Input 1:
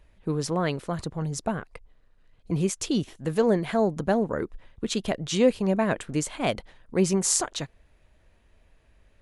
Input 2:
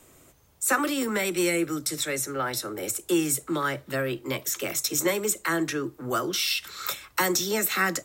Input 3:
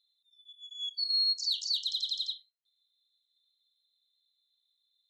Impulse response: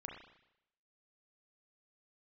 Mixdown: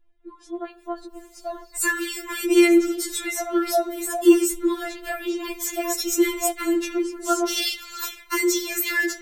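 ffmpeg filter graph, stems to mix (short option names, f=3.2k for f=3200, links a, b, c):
-filter_complex "[0:a]highshelf=f=2.2k:g=-11.5,dynaudnorm=f=420:g=5:m=8.5dB,volume=-7dB,asplit=3[a][b][c];[b]volume=-10.5dB[d];[1:a]bandreject=f=189.3:t=h:w=4,bandreject=f=378.6:t=h:w=4,bandreject=f=567.9:t=h:w=4,bandreject=f=757.2:t=h:w=4,bandreject=f=946.5:t=h:w=4,bandreject=f=1.1358k:t=h:w=4,bandreject=f=1.3251k:t=h:w=4,bandreject=f=1.5144k:t=h:w=4,bandreject=f=1.7037k:t=h:w=4,bandreject=f=1.893k:t=h:w=4,bandreject=f=2.0823k:t=h:w=4,bandreject=f=2.2716k:t=h:w=4,bandreject=f=2.4609k:t=h:w=4,bandreject=f=2.6502k:t=h:w=4,bandreject=f=2.8395k:t=h:w=4,bandreject=f=3.0288k:t=h:w=4,bandreject=f=3.2181k:t=h:w=4,bandreject=f=3.4074k:t=h:w=4,bandreject=f=3.5967k:t=h:w=4,bandreject=f=3.786k:t=h:w=4,bandreject=f=3.9753k:t=h:w=4,bandreject=f=4.1646k:t=h:w=4,bandreject=f=4.3539k:t=h:w=4,bandreject=f=4.5432k:t=h:w=4,bandreject=f=4.7325k:t=h:w=4,bandreject=f=4.9218k:t=h:w=4,bandreject=f=5.1111k:t=h:w=4,bandreject=f=5.3004k:t=h:w=4,bandreject=f=5.4897k:t=h:w=4,bandreject=f=5.679k:t=h:w=4,bandreject=f=5.8683k:t=h:w=4,bandreject=f=6.0576k:t=h:w=4,bandreject=f=6.2469k:t=h:w=4,bandreject=f=6.4362k:t=h:w=4,bandreject=f=6.6255k:t=h:w=4,bandreject=f=6.8148k:t=h:w=4,bandreject=f=7.0041k:t=h:w=4,bandreject=f=7.1934k:t=h:w=4,adelay=1150,volume=0.5dB,asplit=2[e][f];[f]volume=-3.5dB[g];[2:a]acompressor=threshold=-36dB:ratio=6,acrusher=bits=2:mode=log:mix=0:aa=0.000001,volume=-19dB[h];[c]apad=whole_len=224650[i];[h][i]sidechaingate=range=-33dB:threshold=-53dB:ratio=16:detection=peak[j];[3:a]atrim=start_sample=2205[k];[d][g]amix=inputs=2:normalize=0[l];[l][k]afir=irnorm=-1:irlink=0[m];[a][e][j][m]amix=inputs=4:normalize=0,afftfilt=real='re*4*eq(mod(b,16),0)':imag='im*4*eq(mod(b,16),0)':win_size=2048:overlap=0.75"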